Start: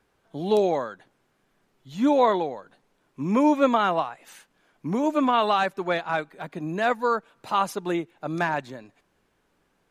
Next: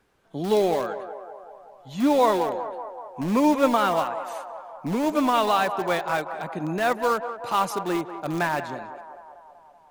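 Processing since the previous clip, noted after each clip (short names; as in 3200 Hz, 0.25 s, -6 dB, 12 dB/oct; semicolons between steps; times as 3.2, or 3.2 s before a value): in parallel at -11.5 dB: wrapped overs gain 23.5 dB; on the sum: narrowing echo 0.19 s, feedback 71%, band-pass 800 Hz, level -9.5 dB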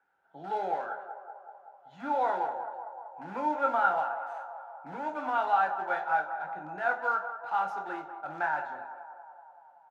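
double band-pass 1100 Hz, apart 0.72 oct; doubler 26 ms -13 dB; on a send at -4.5 dB: reverb RT60 0.40 s, pre-delay 3 ms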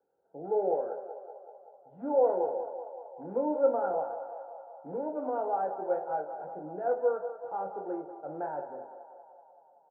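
synth low-pass 480 Hz, resonance Q 4.7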